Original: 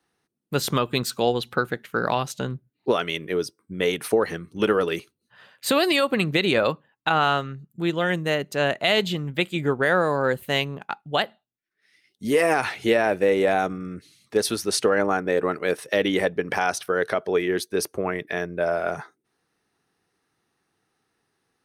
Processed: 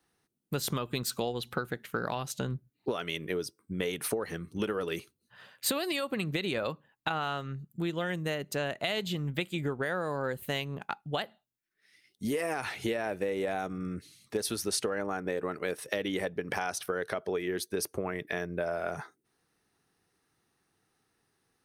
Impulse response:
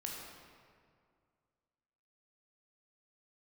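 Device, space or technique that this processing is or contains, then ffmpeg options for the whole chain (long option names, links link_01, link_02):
ASMR close-microphone chain: -af "lowshelf=frequency=120:gain=6.5,acompressor=threshold=-26dB:ratio=6,highshelf=frequency=7100:gain=6.5,volume=-3dB"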